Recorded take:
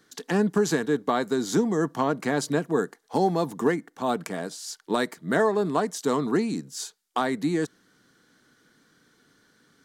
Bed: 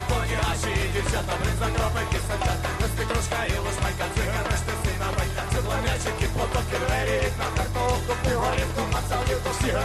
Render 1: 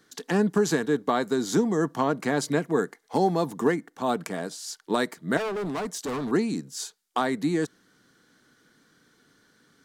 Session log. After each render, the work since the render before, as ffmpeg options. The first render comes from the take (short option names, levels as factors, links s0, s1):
-filter_complex "[0:a]asettb=1/sr,asplit=3[s0][s1][s2];[s0]atrim=end=2.434[s3];[s1]atrim=start=2.43:end=3.17,asetpts=PTS-STARTPTS,afade=t=in:d=0.004:c=qsin,afade=t=out:st=0.736:d=0.004:c=qsin,equalizer=f=2100:t=o:w=0.21:g=9[s4];[s2]atrim=start=3.166[s5];[s3][s4]acrossfade=d=0.004:c1=hsin:c2=qsin[s6];[s6][s5]acrossfade=d=0.004:c1=qsin:c2=hsin,asettb=1/sr,asplit=3[s7][s8][s9];[s7]atrim=end=5.374[s10];[s8]atrim=start=5.37:end=6.31,asetpts=PTS-STARTPTS,afade=t=in:d=0.004:c=qsin,afade=t=out:st=0.936:d=0.004:c=qsin,asoftclip=type=hard:threshold=0.0422[s11];[s9]atrim=start=6.306[s12];[s10][s11]acrossfade=d=0.004:c1=hsin:c2=qsin[s13];[s13][s12]acrossfade=d=0.004:c1=qsin:c2=hsin"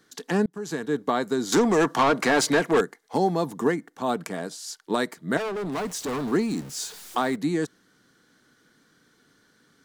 -filter_complex "[0:a]asettb=1/sr,asplit=3[s0][s1][s2];[s0]atrim=end=1.524[s3];[s1]atrim=start=1.52:end=2.81,asetpts=PTS-STARTPTS,afade=t=in:d=0.004:c=qsin,afade=t=out:st=1.286:d=0.004:c=qsin,asplit=2[s4][s5];[s5]highpass=f=720:p=1,volume=10,asoftclip=type=tanh:threshold=0.266[s6];[s4][s6]amix=inputs=2:normalize=0,lowpass=f=6000:p=1,volume=0.501[s7];[s2]atrim=start=2.806[s8];[s3][s7]acrossfade=d=0.004:c1=hsin:c2=qsin[s9];[s9][s8]acrossfade=d=0.004:c1=qsin:c2=hsin,asettb=1/sr,asplit=3[s10][s11][s12];[s10]atrim=end=5.724[s13];[s11]atrim=start=5.72:end=7.36,asetpts=PTS-STARTPTS,afade=t=in:d=0.004:c=qsin,afade=t=out:st=1.636:d=0.004:c=qsin,aeval=exprs='val(0)+0.5*0.0133*sgn(val(0))':c=same[s14];[s12]atrim=start=7.356[s15];[s13][s14]acrossfade=d=0.004:c1=hsin:c2=qsin[s16];[s16][s15]acrossfade=d=0.004:c1=qsin:c2=hsin,asplit=2[s17][s18];[s17]atrim=end=0.46,asetpts=PTS-STARTPTS,afade=t=out:st=0.456:d=0.004:c=hsin[s19];[s18]atrim=start=0.46,asetpts=PTS-STARTPTS,afade=t=in:d=0.56[s20];[s19][s20]concat=n=2:v=0:a=1"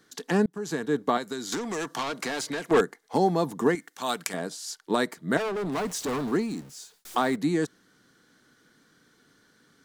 -filter_complex "[0:a]asettb=1/sr,asplit=3[s0][s1][s2];[s0]atrim=end=1.174[s3];[s1]atrim=start=1.17:end=2.71,asetpts=PTS-STARTPTS,afade=t=in:d=0.004:c=qsin,afade=t=out:st=1.536:d=0.004:c=qsin,acrossover=split=1500|3000[s4][s5][s6];[s4]acompressor=threshold=0.0224:ratio=4[s7];[s5]acompressor=threshold=0.00891:ratio=4[s8];[s6]acompressor=threshold=0.0178:ratio=4[s9];[s7][s8][s9]amix=inputs=3:normalize=0[s10];[s2]atrim=start=2.706[s11];[s3][s10]acrossfade=d=0.004:c1=hsin:c2=qsin[s12];[s12][s11]acrossfade=d=0.004:c1=qsin:c2=hsin,asettb=1/sr,asplit=3[s13][s14][s15];[s13]atrim=end=3.754[s16];[s14]atrim=start=3.75:end=4.34,asetpts=PTS-STARTPTS,afade=t=in:d=0.004:c=qsin,afade=t=out:st=0.586:d=0.004:c=qsin,tiltshelf=f=1200:g=-9.5[s17];[s15]atrim=start=4.336[s18];[s16][s17]acrossfade=d=0.004:c1=hsin:c2=qsin[s19];[s19][s18]acrossfade=d=0.004:c1=qsin:c2=hsin,asplit=2[s20][s21];[s20]atrim=end=7.05,asetpts=PTS-STARTPTS,afade=t=out:st=6.12:d=0.93[s22];[s21]atrim=start=7.05,asetpts=PTS-STARTPTS,afade=t=in:d=0.004:c=hsin[s23];[s22][s23]concat=n=2:v=0:a=1"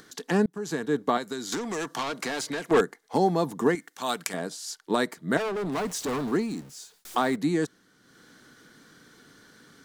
-af "acompressor=mode=upward:threshold=0.00562:ratio=2.5"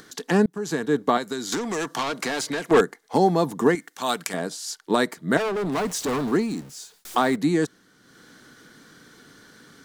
-af "volume=1.58,alimiter=limit=0.708:level=0:latency=1"